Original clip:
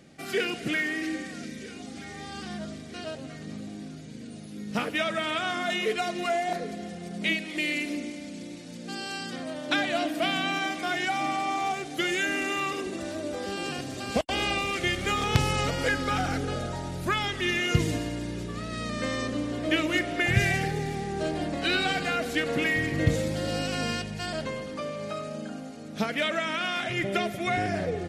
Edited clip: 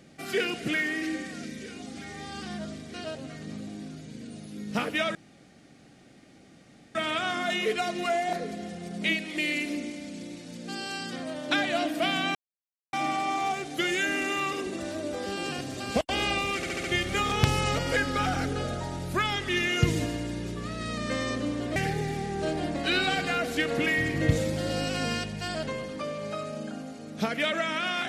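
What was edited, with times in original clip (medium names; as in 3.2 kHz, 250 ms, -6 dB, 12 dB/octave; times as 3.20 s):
5.15 s: insert room tone 1.80 s
10.55–11.13 s: mute
14.76 s: stutter 0.07 s, 5 plays
19.68–20.54 s: delete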